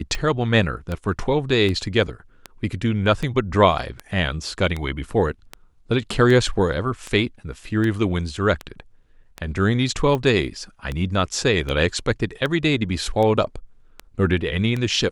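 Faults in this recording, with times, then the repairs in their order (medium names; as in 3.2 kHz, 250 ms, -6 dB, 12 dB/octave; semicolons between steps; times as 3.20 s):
tick 78 rpm -14 dBFS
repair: de-click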